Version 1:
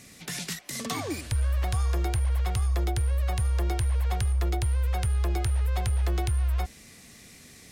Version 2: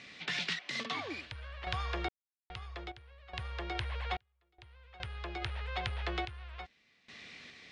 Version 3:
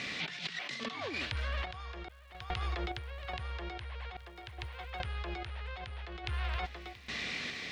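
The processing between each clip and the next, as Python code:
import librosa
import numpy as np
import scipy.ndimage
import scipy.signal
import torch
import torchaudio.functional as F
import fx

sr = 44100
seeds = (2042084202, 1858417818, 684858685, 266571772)

y1 = scipy.signal.sosfilt(scipy.signal.butter(4, 3500.0, 'lowpass', fs=sr, output='sos'), x)
y1 = fx.tilt_eq(y1, sr, slope=3.5)
y1 = fx.tremolo_random(y1, sr, seeds[0], hz=2.4, depth_pct=100)
y1 = F.gain(torch.from_numpy(y1), 1.0).numpy()
y2 = y1 + 10.0 ** (-23.5 / 20.0) * np.pad(y1, (int(679 * sr / 1000.0), 0))[:len(y1)]
y2 = fx.dmg_crackle(y2, sr, seeds[1], per_s=260.0, level_db=-68.0)
y2 = fx.over_compress(y2, sr, threshold_db=-46.0, ratio=-1.0)
y2 = F.gain(torch.from_numpy(y2), 7.0).numpy()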